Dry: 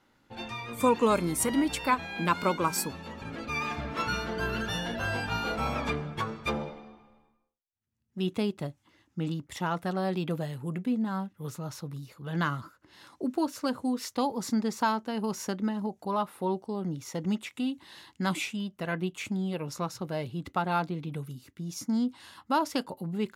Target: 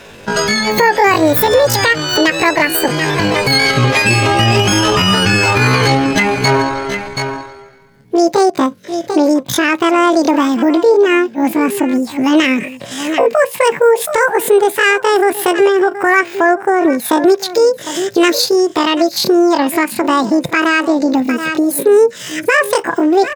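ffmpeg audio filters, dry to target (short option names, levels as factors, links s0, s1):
-af "highshelf=f=4000:g=-6,aecho=1:1:736:0.133,asetrate=80880,aresample=44100,atempo=0.545254,acompressor=threshold=0.00447:ratio=2,equalizer=f=110:t=o:w=0.99:g=6,alimiter=level_in=37.6:limit=0.891:release=50:level=0:latency=1,volume=0.891"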